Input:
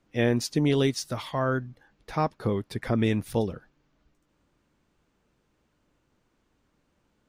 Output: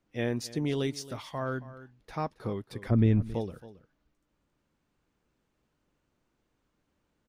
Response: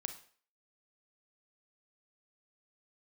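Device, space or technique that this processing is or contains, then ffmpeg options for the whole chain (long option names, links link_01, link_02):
ducked delay: -filter_complex "[0:a]asplit=3[link_01][link_02][link_03];[link_02]adelay=273,volume=-4dB[link_04];[link_03]apad=whole_len=333231[link_05];[link_04][link_05]sidechaincompress=threshold=-36dB:ratio=4:attack=16:release=1470[link_06];[link_01][link_06]amix=inputs=2:normalize=0,asplit=3[link_07][link_08][link_09];[link_07]afade=type=out:start_time=2.9:duration=0.02[link_10];[link_08]aemphasis=mode=reproduction:type=riaa,afade=type=in:start_time=2.9:duration=0.02,afade=type=out:start_time=3.33:duration=0.02[link_11];[link_09]afade=type=in:start_time=3.33:duration=0.02[link_12];[link_10][link_11][link_12]amix=inputs=3:normalize=0,volume=-7dB"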